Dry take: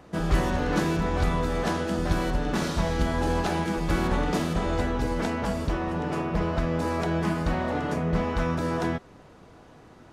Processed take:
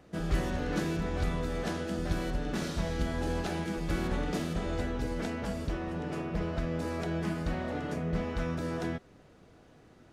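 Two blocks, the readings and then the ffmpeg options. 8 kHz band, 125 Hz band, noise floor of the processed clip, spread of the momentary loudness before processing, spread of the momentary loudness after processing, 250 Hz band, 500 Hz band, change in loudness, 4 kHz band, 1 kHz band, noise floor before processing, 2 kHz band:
-6.0 dB, -6.0 dB, -58 dBFS, 3 LU, 3 LU, -6.0 dB, -7.0 dB, -6.5 dB, -6.0 dB, -10.0 dB, -51 dBFS, -7.0 dB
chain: -af "equalizer=f=980:t=o:w=0.69:g=-6.5,volume=-6dB"

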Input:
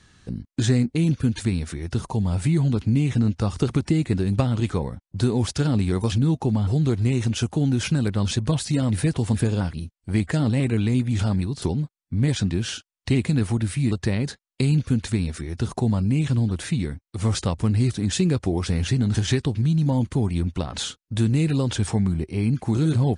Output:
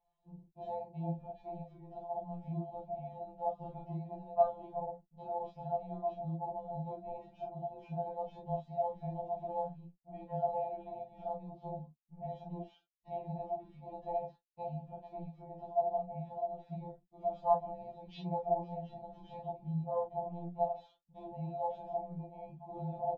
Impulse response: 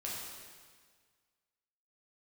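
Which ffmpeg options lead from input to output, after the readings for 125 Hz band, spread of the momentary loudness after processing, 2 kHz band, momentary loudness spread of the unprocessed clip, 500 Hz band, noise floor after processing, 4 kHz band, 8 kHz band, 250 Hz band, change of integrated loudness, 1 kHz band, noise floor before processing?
-24.5 dB, 13 LU, under -30 dB, 6 LU, -6.5 dB, -76 dBFS, under -30 dB, under -40 dB, -24.0 dB, -16.5 dB, +0.5 dB, -76 dBFS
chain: -filter_complex "[0:a]aemphasis=mode=production:type=cd,afwtdn=0.0447,firequalizer=gain_entry='entry(120,0);entry(200,-27);entry(720,11);entry(1600,-27);entry(2600,-18);entry(8300,-24)':delay=0.05:min_phase=1,acrossover=split=180|520|3700[a][b][c][d];[b]alimiter=level_in=25dB:limit=-24dB:level=0:latency=1:release=461,volume=-25dB[e];[d]acrusher=bits=4:mix=0:aa=0.000001[f];[a][e][c][f]amix=inputs=4:normalize=0[g];[1:a]atrim=start_sample=2205,afade=t=out:st=0.17:d=0.01,atrim=end_sample=7938,asetrate=88200,aresample=44100[h];[g][h]afir=irnorm=-1:irlink=0,afftfilt=real='re*2.83*eq(mod(b,8),0)':imag='im*2.83*eq(mod(b,8),0)':win_size=2048:overlap=0.75,volume=8.5dB"

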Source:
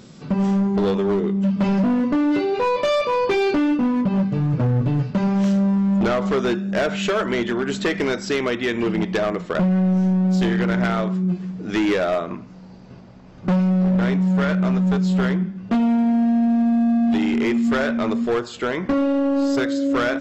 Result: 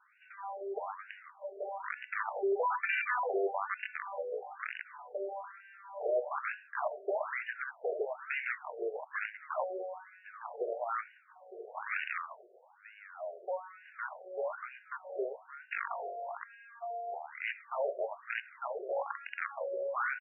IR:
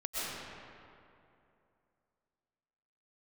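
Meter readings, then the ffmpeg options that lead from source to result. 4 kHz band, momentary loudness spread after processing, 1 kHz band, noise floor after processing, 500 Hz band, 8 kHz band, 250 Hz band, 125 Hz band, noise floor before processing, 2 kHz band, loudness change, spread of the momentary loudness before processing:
-23.0 dB, 14 LU, -9.5 dB, -61 dBFS, -13.5 dB, n/a, -36.0 dB, under -40 dB, -41 dBFS, -9.0 dB, -17.5 dB, 5 LU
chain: -filter_complex "[0:a]asplit=2[a][b];[b]adelay=1108,volume=-11dB,highshelf=f=4k:g=-24.9[c];[a][c]amix=inputs=2:normalize=0,adynamicequalizer=threshold=0.0316:dfrequency=170:dqfactor=1.6:tfrequency=170:tqfactor=1.6:attack=5:release=100:ratio=0.375:range=2.5:mode=cutabove:tftype=bell,aeval=exprs='(mod(5.31*val(0)+1,2)-1)/5.31':c=same,asplit=2[d][e];[1:a]atrim=start_sample=2205,afade=t=out:st=0.16:d=0.01,atrim=end_sample=7497[f];[e][f]afir=irnorm=-1:irlink=0,volume=-14dB[g];[d][g]amix=inputs=2:normalize=0,afftfilt=real='re*between(b*sr/1024,510*pow(2100/510,0.5+0.5*sin(2*PI*1.1*pts/sr))/1.41,510*pow(2100/510,0.5+0.5*sin(2*PI*1.1*pts/sr))*1.41)':imag='im*between(b*sr/1024,510*pow(2100/510,0.5+0.5*sin(2*PI*1.1*pts/sr))/1.41,510*pow(2100/510,0.5+0.5*sin(2*PI*1.1*pts/sr))*1.41)':win_size=1024:overlap=0.75,volume=-7.5dB"

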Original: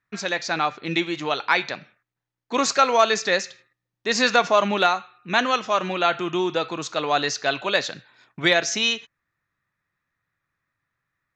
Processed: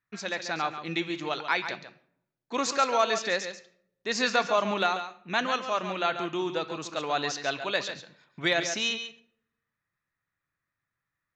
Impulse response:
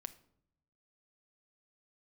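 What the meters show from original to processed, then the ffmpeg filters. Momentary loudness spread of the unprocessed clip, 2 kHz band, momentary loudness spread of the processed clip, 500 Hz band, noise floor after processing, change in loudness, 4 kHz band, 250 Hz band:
9 LU, -6.5 dB, 10 LU, -6.5 dB, under -85 dBFS, -6.5 dB, -6.5 dB, -6.5 dB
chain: -filter_complex "[0:a]asplit=2[a][b];[1:a]atrim=start_sample=2205,adelay=139[c];[b][c]afir=irnorm=-1:irlink=0,volume=-5.5dB[d];[a][d]amix=inputs=2:normalize=0,volume=-7dB"

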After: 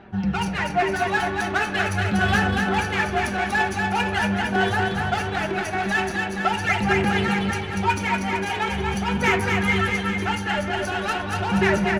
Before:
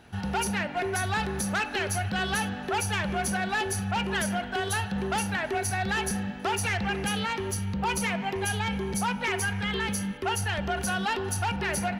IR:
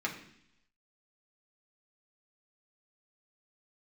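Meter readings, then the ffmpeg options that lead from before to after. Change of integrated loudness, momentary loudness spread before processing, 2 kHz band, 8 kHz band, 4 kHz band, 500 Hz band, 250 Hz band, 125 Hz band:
+6.0 dB, 2 LU, +7.5 dB, -5.0 dB, +3.5 dB, +6.5 dB, +6.5 dB, +5.0 dB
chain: -filter_complex "[0:a]aphaser=in_gain=1:out_gain=1:delay=3.6:decay=0.54:speed=0.43:type=sinusoidal,adynamicsmooth=sensitivity=3.5:basefreq=2.9k,flanger=delay=5:depth=8.4:regen=49:speed=0.17:shape=triangular,aecho=1:1:240|456|650.4|825.4|982.8:0.631|0.398|0.251|0.158|0.1,asplit=2[a][b];[1:a]atrim=start_sample=2205[c];[b][c]afir=irnorm=-1:irlink=0,volume=-6dB[d];[a][d]amix=inputs=2:normalize=0,volume=2.5dB"

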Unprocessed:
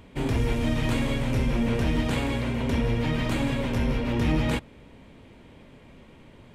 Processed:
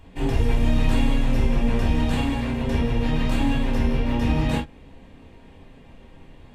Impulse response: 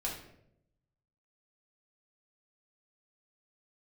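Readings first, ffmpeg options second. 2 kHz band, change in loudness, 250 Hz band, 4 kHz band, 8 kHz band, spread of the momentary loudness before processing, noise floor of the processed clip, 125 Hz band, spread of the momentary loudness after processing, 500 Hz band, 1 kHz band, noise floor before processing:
0.0 dB, +2.5 dB, +2.5 dB, +1.0 dB, -0.5 dB, 2 LU, -48 dBFS, +2.0 dB, 3 LU, +0.5 dB, +3.0 dB, -51 dBFS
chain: -filter_complex "[1:a]atrim=start_sample=2205,atrim=end_sample=3087,asetrate=48510,aresample=44100[a];[0:a][a]afir=irnorm=-1:irlink=0"

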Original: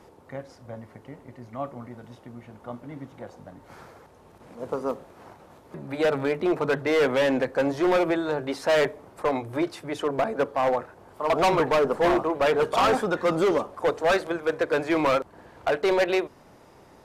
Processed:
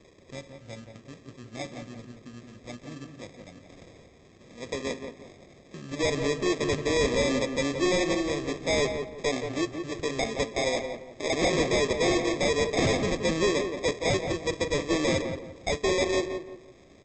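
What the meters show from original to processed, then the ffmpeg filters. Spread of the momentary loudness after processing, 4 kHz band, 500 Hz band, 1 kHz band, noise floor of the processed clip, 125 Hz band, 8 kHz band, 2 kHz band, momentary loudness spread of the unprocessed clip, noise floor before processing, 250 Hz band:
20 LU, +4.0 dB, -3.5 dB, -8.0 dB, -55 dBFS, +2.5 dB, +10.0 dB, -1.5 dB, 20 LU, -53 dBFS, -1.5 dB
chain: -filter_complex "[0:a]aresample=16000,acrusher=samples=11:mix=1:aa=0.000001,aresample=44100,equalizer=f=880:w=3.8:g=-14,asplit=2[a][b];[b]adelay=173,lowpass=f=1.8k:p=1,volume=-6dB,asplit=2[c][d];[d]adelay=173,lowpass=f=1.8k:p=1,volume=0.33,asplit=2[e][f];[f]adelay=173,lowpass=f=1.8k:p=1,volume=0.33,asplit=2[g][h];[h]adelay=173,lowpass=f=1.8k:p=1,volume=0.33[i];[a][c][e][g][i]amix=inputs=5:normalize=0,volume=-2.5dB"

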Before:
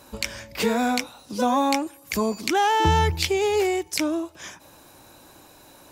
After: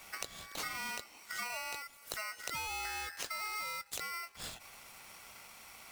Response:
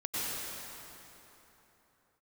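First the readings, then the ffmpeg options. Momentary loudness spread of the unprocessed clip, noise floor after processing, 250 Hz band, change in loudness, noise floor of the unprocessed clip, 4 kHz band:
11 LU, -58 dBFS, -33.0 dB, -16.5 dB, -51 dBFS, -13.0 dB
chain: -af "lowshelf=f=130:g=-11.5,acompressor=threshold=-36dB:ratio=6,aeval=exprs='val(0)*sgn(sin(2*PI*1700*n/s))':c=same,volume=-3dB"

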